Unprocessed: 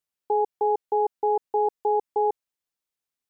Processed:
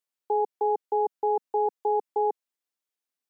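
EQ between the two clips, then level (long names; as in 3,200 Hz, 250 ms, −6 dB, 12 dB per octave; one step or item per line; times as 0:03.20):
high-pass filter 210 Hz 24 dB per octave
−2.0 dB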